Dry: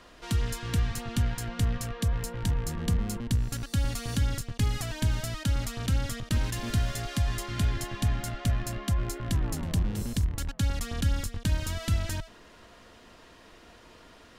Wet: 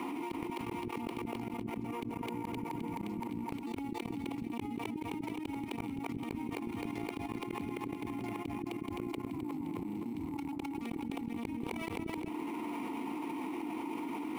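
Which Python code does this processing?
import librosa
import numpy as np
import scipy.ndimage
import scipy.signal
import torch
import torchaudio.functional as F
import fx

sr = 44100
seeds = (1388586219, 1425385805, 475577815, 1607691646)

p1 = scipy.signal.sosfilt(scipy.signal.butter(2, 140.0, 'highpass', fs=sr, output='sos'), x)
p2 = fx.high_shelf(p1, sr, hz=2400.0, db=-6.5)
p3 = fx.level_steps(p2, sr, step_db=19)
p4 = fx.vowel_filter(p3, sr, vowel='u')
p5 = fx.gate_flip(p4, sr, shuts_db=-46.0, range_db=-37)
p6 = fx.sample_hold(p5, sr, seeds[0], rate_hz=12000.0, jitter_pct=0)
p7 = fx.high_shelf(p6, sr, hz=6400.0, db=-8.0)
p8 = p7 + fx.echo_split(p7, sr, split_hz=370.0, low_ms=181, high_ms=260, feedback_pct=52, wet_db=-12.5, dry=0)
p9 = fx.env_flatten(p8, sr, amount_pct=100)
y = F.gain(torch.from_numpy(p9), 17.5).numpy()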